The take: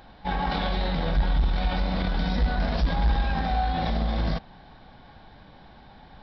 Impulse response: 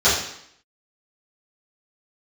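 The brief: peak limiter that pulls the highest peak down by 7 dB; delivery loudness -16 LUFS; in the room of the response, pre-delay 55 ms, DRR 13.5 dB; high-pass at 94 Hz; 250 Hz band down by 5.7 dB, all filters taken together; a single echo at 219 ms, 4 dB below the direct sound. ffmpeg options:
-filter_complex "[0:a]highpass=94,equalizer=f=250:t=o:g=-8.5,alimiter=level_in=1.06:limit=0.0631:level=0:latency=1,volume=0.944,aecho=1:1:219:0.631,asplit=2[s0][s1];[1:a]atrim=start_sample=2205,adelay=55[s2];[s1][s2]afir=irnorm=-1:irlink=0,volume=0.0188[s3];[s0][s3]amix=inputs=2:normalize=0,volume=6.68"

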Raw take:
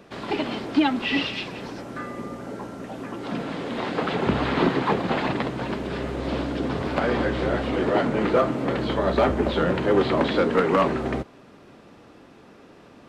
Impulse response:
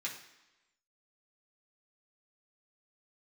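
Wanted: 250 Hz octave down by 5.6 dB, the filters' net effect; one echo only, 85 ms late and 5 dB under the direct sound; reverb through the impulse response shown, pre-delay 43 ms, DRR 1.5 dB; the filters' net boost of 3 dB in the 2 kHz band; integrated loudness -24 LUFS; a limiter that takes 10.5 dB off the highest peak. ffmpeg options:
-filter_complex "[0:a]equalizer=f=250:t=o:g=-7.5,equalizer=f=2000:t=o:g=4,alimiter=limit=0.106:level=0:latency=1,aecho=1:1:85:0.562,asplit=2[s0][s1];[1:a]atrim=start_sample=2205,adelay=43[s2];[s1][s2]afir=irnorm=-1:irlink=0,volume=0.708[s3];[s0][s3]amix=inputs=2:normalize=0,volume=1.33"

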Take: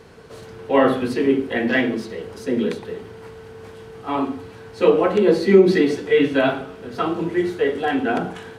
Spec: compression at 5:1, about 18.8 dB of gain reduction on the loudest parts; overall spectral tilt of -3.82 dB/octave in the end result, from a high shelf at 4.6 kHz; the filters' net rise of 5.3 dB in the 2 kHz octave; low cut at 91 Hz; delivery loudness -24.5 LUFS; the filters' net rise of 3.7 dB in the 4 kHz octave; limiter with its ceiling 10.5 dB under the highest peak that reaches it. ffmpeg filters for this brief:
-af "highpass=91,equalizer=f=2000:t=o:g=6,equalizer=f=4000:t=o:g=4,highshelf=f=4600:g=-3.5,acompressor=threshold=0.0355:ratio=5,volume=4.22,alimiter=limit=0.168:level=0:latency=1"

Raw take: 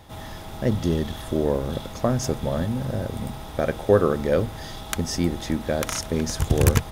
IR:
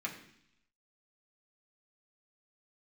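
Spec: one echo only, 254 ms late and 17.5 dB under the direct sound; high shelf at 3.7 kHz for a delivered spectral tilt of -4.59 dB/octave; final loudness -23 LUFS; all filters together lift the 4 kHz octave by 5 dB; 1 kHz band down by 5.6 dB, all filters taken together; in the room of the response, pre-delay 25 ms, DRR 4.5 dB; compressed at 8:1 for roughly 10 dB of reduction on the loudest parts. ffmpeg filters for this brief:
-filter_complex "[0:a]equalizer=f=1000:t=o:g=-8.5,highshelf=f=3700:g=3.5,equalizer=f=4000:t=o:g=4.5,acompressor=threshold=0.0708:ratio=8,aecho=1:1:254:0.133,asplit=2[s0][s1];[1:a]atrim=start_sample=2205,adelay=25[s2];[s1][s2]afir=irnorm=-1:irlink=0,volume=0.447[s3];[s0][s3]amix=inputs=2:normalize=0,volume=1.88"

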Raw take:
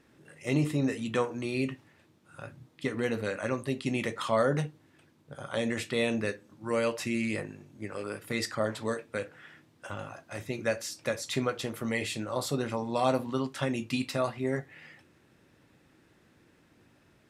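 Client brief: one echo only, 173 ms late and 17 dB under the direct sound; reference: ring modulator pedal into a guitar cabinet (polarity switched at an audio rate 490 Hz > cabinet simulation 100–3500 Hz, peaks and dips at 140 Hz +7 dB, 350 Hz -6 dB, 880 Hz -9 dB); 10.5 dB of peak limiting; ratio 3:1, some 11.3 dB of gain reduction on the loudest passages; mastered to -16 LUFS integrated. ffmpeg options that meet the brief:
-af "acompressor=threshold=0.0141:ratio=3,alimiter=level_in=2.11:limit=0.0631:level=0:latency=1,volume=0.473,aecho=1:1:173:0.141,aeval=exprs='val(0)*sgn(sin(2*PI*490*n/s))':c=same,highpass=100,equalizer=f=140:t=q:w=4:g=7,equalizer=f=350:t=q:w=4:g=-6,equalizer=f=880:t=q:w=4:g=-9,lowpass=f=3500:w=0.5412,lowpass=f=3500:w=1.3066,volume=26.6"

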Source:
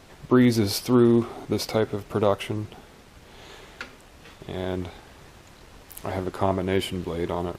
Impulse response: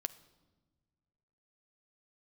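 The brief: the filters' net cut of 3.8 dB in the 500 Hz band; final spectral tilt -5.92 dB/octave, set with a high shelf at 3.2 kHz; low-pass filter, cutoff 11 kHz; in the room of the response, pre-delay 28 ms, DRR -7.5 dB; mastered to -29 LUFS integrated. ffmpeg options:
-filter_complex "[0:a]lowpass=11000,equalizer=f=500:t=o:g=-5.5,highshelf=f=3200:g=-3,asplit=2[s0][s1];[1:a]atrim=start_sample=2205,adelay=28[s2];[s1][s2]afir=irnorm=-1:irlink=0,volume=2.66[s3];[s0][s3]amix=inputs=2:normalize=0,volume=0.282"

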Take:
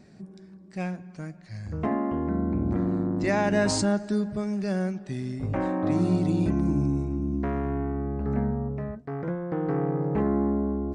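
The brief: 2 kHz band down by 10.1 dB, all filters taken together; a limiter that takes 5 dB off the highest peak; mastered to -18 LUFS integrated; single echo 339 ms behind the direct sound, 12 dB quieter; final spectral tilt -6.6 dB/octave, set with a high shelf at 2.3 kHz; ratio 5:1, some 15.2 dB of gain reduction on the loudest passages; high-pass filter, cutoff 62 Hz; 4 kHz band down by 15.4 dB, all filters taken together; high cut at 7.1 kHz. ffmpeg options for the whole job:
-af "highpass=62,lowpass=7100,equalizer=f=2000:t=o:g=-7.5,highshelf=f=2300:g=-9,equalizer=f=4000:t=o:g=-8.5,acompressor=threshold=0.0126:ratio=5,alimiter=level_in=2.82:limit=0.0631:level=0:latency=1,volume=0.355,aecho=1:1:339:0.251,volume=15"

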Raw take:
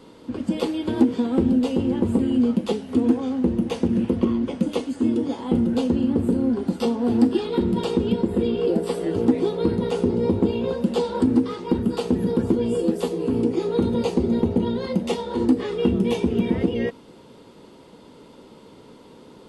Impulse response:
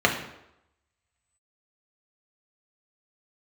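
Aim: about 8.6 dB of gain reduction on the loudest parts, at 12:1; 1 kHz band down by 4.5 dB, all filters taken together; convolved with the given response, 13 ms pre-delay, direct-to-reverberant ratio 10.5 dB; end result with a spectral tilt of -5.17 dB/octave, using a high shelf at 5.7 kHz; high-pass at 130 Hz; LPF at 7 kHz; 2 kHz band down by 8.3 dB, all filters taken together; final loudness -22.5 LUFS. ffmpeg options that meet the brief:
-filter_complex "[0:a]highpass=130,lowpass=7000,equalizer=f=1000:t=o:g=-3.5,equalizer=f=2000:t=o:g=-9,highshelf=f=5700:g=-8.5,acompressor=threshold=0.0891:ratio=12,asplit=2[s0][s1];[1:a]atrim=start_sample=2205,adelay=13[s2];[s1][s2]afir=irnorm=-1:irlink=0,volume=0.0376[s3];[s0][s3]amix=inputs=2:normalize=0,volume=1.58"

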